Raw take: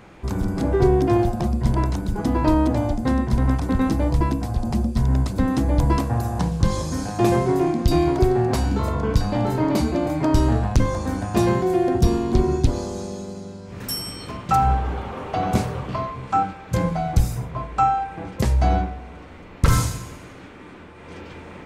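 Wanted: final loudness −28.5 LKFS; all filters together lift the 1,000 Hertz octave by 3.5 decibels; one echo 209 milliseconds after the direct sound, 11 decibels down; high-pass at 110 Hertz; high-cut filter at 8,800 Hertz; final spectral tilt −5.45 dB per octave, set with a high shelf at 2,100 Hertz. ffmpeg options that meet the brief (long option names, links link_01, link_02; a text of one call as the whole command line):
ffmpeg -i in.wav -af "highpass=110,lowpass=8800,equalizer=frequency=1000:width_type=o:gain=5.5,highshelf=frequency=2100:gain=-3,aecho=1:1:209:0.282,volume=-6.5dB" out.wav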